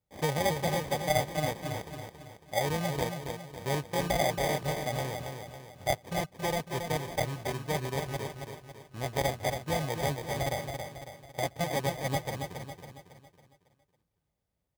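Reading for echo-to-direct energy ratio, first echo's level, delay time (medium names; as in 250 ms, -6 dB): -5.0 dB, -6.0 dB, 276 ms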